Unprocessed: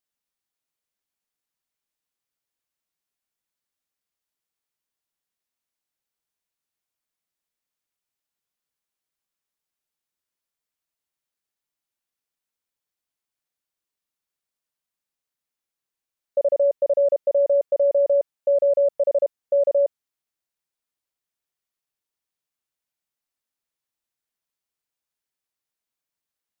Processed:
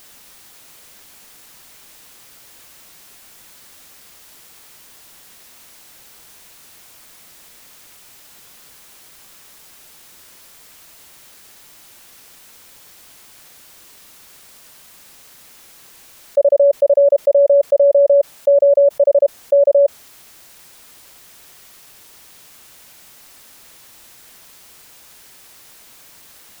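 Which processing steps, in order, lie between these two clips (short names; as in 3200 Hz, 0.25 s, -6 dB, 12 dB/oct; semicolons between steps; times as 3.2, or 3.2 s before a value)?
dynamic EQ 600 Hz, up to +5 dB, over -33 dBFS, Q 2.4; fast leveller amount 70%; gain +2.5 dB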